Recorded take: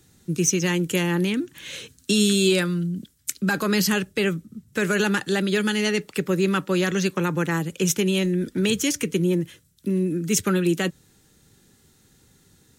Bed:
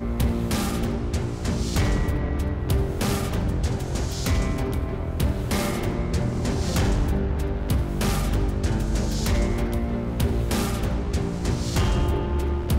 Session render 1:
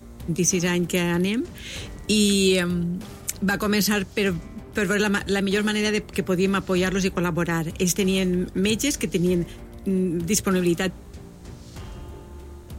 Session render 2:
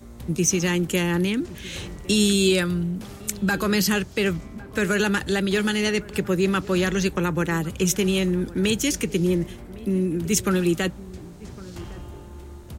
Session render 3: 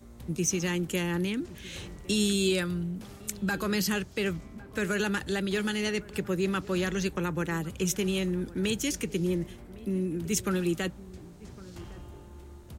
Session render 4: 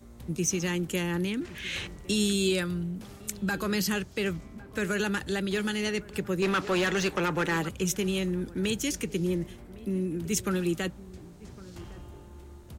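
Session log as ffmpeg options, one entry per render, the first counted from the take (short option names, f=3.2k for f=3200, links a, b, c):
-filter_complex "[1:a]volume=-16dB[a];[0:a][a]amix=inputs=2:normalize=0"
-filter_complex "[0:a]asplit=2[a][b];[b]adelay=1108,volume=-19dB,highshelf=f=4k:g=-24.9[c];[a][c]amix=inputs=2:normalize=0"
-af "volume=-7dB"
-filter_complex "[0:a]asettb=1/sr,asplit=3[a][b][c];[a]atrim=end=1.414[d];[b]atrim=start=1.41:end=1.87,asetpts=PTS-STARTPTS,afade=t=in:d=0.004:c=qsin,afade=t=out:st=0.456:d=0.004:c=qsin,equalizer=f=2.1k:w=0.72:g=11.5[e];[c]atrim=start=1.866[f];[d][e]acrossfade=d=0.004:c1=hsin:c2=qsin[g];[g][f]acrossfade=d=0.004:c1=qsin:c2=hsin,asettb=1/sr,asplit=3[h][i][j];[h]atrim=end=6.424[k];[i]atrim=start=6.42:end=7.69,asetpts=PTS-STARTPTS,afade=t=in:d=0.004:c=qsin,afade=t=out:st=1.266:d=0.004:c=qsin,asplit=2[l][m];[m]highpass=f=720:p=1,volume=19dB,asoftclip=type=tanh:threshold=-18dB[n];[l][n]amix=inputs=2:normalize=0,lowpass=f=3.4k:p=1,volume=-6dB[o];[j]atrim=start=7.686[p];[k][o]acrossfade=d=0.004:c1=hsin:c2=qsin[q];[q][p]acrossfade=d=0.004:c1=qsin:c2=hsin"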